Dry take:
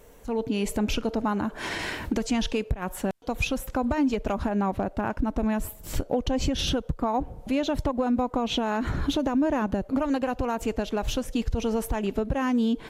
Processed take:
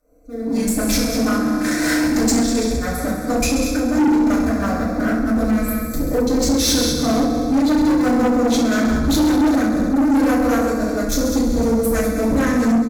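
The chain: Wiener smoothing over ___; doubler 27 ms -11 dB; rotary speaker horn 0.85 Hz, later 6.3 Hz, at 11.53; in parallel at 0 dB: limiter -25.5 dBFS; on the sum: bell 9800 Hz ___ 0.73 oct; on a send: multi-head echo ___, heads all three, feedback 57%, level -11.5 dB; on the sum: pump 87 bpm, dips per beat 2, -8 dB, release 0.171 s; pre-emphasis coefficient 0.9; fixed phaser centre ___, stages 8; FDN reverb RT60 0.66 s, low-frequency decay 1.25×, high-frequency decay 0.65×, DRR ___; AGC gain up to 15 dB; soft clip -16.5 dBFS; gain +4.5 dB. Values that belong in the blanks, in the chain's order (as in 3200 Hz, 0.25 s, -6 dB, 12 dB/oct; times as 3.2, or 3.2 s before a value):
25 samples, -3.5 dB, 66 ms, 590 Hz, -9 dB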